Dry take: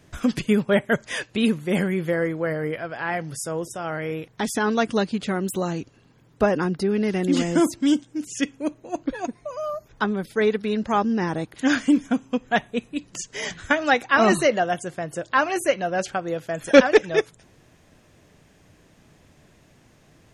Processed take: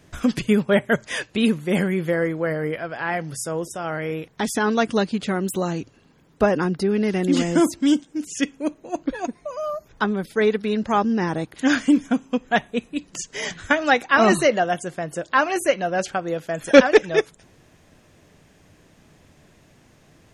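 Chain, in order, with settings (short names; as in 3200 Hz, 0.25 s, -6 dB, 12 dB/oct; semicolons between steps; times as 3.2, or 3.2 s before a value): notches 60/120 Hz; gain +1.5 dB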